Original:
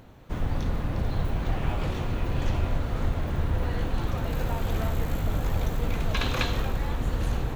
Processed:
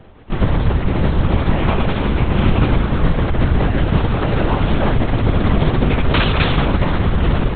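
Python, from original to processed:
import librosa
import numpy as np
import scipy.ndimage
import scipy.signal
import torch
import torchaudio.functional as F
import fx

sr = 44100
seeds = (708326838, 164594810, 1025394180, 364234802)

p1 = fx.quant_dither(x, sr, seeds[0], bits=6, dither='none')
p2 = x + F.gain(torch.from_numpy(p1), -6.0).numpy()
p3 = fx.lpc_vocoder(p2, sr, seeds[1], excitation='whisper', order=8)
y = F.gain(torch.from_numpy(p3), 7.5).numpy()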